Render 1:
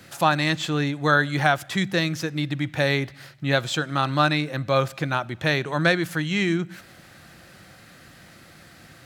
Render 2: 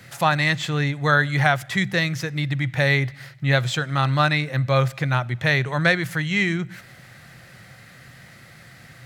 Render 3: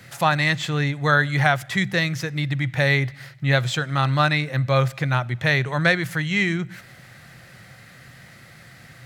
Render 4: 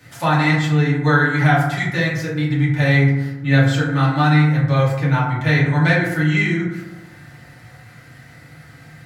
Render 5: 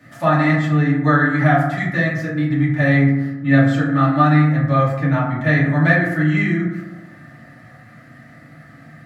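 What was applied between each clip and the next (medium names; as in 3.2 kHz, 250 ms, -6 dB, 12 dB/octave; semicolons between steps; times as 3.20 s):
graphic EQ with 31 bands 125 Hz +11 dB, 315 Hz -7 dB, 2 kHz +7 dB
no audible change
FDN reverb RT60 1 s, low-frequency decay 1.35×, high-frequency decay 0.35×, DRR -8 dB; trim -6.5 dB
small resonant body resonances 240/620/1200/1700 Hz, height 17 dB, ringing for 25 ms; trim -9.5 dB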